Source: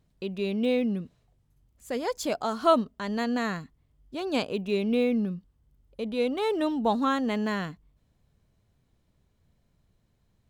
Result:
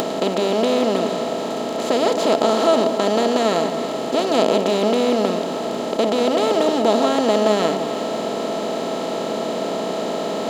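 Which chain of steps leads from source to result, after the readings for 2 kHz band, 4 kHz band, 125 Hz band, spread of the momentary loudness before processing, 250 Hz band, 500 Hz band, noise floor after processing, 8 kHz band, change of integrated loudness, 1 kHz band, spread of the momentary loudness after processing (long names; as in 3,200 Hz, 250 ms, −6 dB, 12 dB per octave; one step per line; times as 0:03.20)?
+7.0 dB, +13.5 dB, +6.0 dB, 11 LU, +7.0 dB, +12.5 dB, −25 dBFS, +15.0 dB, +8.5 dB, +10.5 dB, 7 LU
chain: compressor on every frequency bin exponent 0.2
high-pass filter 320 Hz 6 dB per octave
high-shelf EQ 8,300 Hz −11 dB
on a send: delay that swaps between a low-pass and a high-pass 159 ms, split 1,100 Hz, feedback 59%, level −8.5 dB
on the sum: upward compression, threshold −23 dBFS
flat-topped bell 1,500 Hz −8 dB
level +4 dB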